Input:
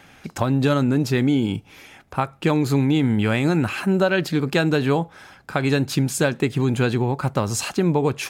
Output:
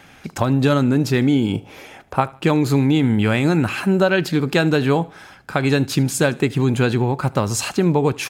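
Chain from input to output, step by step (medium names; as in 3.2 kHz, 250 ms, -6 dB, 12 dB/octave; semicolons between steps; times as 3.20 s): 1.53–2.20 s: peaking EQ 560 Hz +13.5 dB -> +5 dB 1.6 oct; on a send: feedback delay 76 ms, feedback 40%, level -22.5 dB; on the sum: trim +2.5 dB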